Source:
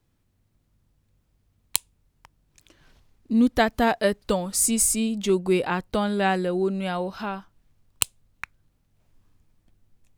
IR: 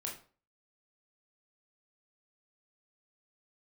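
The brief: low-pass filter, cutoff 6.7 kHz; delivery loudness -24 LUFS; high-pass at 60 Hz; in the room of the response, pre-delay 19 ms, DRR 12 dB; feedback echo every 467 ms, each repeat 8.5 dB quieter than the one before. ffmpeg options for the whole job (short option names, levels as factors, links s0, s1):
-filter_complex "[0:a]highpass=60,lowpass=6700,aecho=1:1:467|934|1401|1868:0.376|0.143|0.0543|0.0206,asplit=2[s0][s1];[1:a]atrim=start_sample=2205,adelay=19[s2];[s1][s2]afir=irnorm=-1:irlink=0,volume=0.251[s3];[s0][s3]amix=inputs=2:normalize=0,volume=1.06"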